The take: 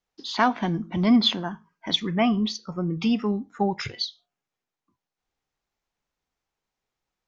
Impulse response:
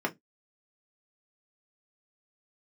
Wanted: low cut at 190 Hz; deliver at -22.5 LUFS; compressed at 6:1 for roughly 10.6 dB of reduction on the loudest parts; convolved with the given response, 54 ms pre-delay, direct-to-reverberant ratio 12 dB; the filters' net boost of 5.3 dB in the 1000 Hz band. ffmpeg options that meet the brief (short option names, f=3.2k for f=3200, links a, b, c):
-filter_complex "[0:a]highpass=190,equalizer=f=1k:t=o:g=7,acompressor=threshold=-22dB:ratio=6,asplit=2[a][b];[1:a]atrim=start_sample=2205,adelay=54[c];[b][c]afir=irnorm=-1:irlink=0,volume=-20dB[d];[a][d]amix=inputs=2:normalize=0,volume=6dB"